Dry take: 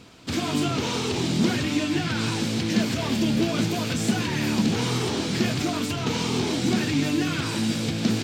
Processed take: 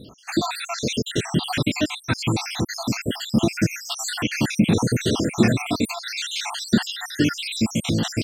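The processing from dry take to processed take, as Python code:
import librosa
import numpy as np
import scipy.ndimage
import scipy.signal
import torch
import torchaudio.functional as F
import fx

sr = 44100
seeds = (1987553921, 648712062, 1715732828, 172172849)

y = fx.spec_dropout(x, sr, seeds[0], share_pct=72)
y = y * librosa.db_to_amplitude(7.5)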